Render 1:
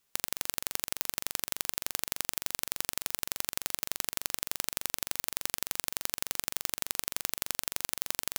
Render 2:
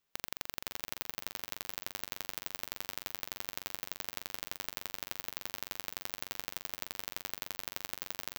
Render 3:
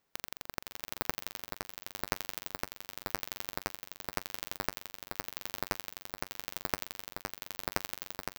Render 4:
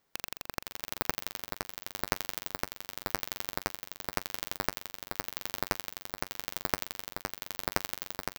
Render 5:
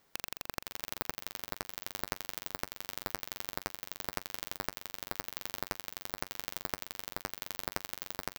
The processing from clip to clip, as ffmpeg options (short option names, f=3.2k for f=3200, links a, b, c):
-filter_complex "[0:a]equalizer=f=10k:t=o:w=1.1:g=-12,asplit=2[a][b];[b]aecho=0:1:523|1046|1569:0.282|0.0733|0.0191[c];[a][c]amix=inputs=2:normalize=0,volume=-4dB"
-filter_complex "[0:a]tremolo=f=0.9:d=0.52,asplit=2[a][b];[b]acrusher=samples=12:mix=1:aa=0.000001,volume=-4dB[c];[a][c]amix=inputs=2:normalize=0,volume=1dB"
-af "bandreject=f=2.6k:w=18,volume=3dB"
-af "acompressor=threshold=-39dB:ratio=4,volume=6dB"